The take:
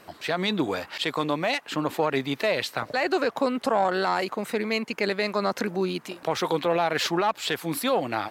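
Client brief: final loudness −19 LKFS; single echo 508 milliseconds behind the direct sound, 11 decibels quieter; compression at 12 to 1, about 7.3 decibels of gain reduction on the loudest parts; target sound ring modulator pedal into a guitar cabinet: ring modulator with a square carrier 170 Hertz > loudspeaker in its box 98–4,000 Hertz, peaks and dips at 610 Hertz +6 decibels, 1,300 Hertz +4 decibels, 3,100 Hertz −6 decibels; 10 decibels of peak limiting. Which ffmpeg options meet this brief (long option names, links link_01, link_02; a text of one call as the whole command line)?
ffmpeg -i in.wav -af "acompressor=threshold=-26dB:ratio=12,alimiter=limit=-23.5dB:level=0:latency=1,aecho=1:1:508:0.282,aeval=exprs='val(0)*sgn(sin(2*PI*170*n/s))':channel_layout=same,highpass=98,equalizer=frequency=610:width_type=q:width=4:gain=6,equalizer=frequency=1300:width_type=q:width=4:gain=4,equalizer=frequency=3100:width_type=q:width=4:gain=-6,lowpass=frequency=4000:width=0.5412,lowpass=frequency=4000:width=1.3066,volume=14.5dB" out.wav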